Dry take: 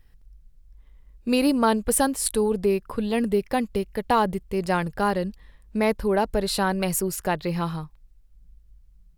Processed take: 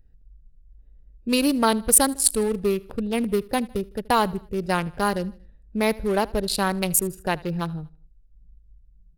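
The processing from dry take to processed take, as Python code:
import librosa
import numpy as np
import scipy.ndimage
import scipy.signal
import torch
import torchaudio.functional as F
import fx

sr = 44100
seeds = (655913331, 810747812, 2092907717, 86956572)

y = fx.wiener(x, sr, points=41)
y = fx.high_shelf(y, sr, hz=2900.0, db=11.0)
y = fx.echo_feedback(y, sr, ms=78, feedback_pct=46, wet_db=-22.5)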